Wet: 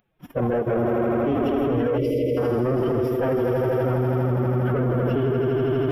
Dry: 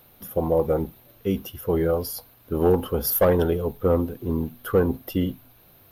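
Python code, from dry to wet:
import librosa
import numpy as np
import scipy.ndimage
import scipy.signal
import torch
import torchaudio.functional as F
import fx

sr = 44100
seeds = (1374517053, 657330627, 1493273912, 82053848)

p1 = fx.spec_quant(x, sr, step_db=15)
p2 = p1 + fx.echo_swell(p1, sr, ms=81, loudest=5, wet_db=-7.5, dry=0)
p3 = fx.level_steps(p2, sr, step_db=13)
p4 = fx.leveller(p3, sr, passes=2)
p5 = scipy.signal.savgol_filter(p4, 25, 4, mode='constant')
p6 = fx.pitch_keep_formants(p5, sr, semitones=6.5)
p7 = fx.spec_erase(p6, sr, start_s=1.98, length_s=0.39, low_hz=640.0, high_hz=1900.0)
y = p7 + 10.0 ** (-21.0 / 20.0) * np.pad(p7, (int(131 * sr / 1000.0), 0))[:len(p7)]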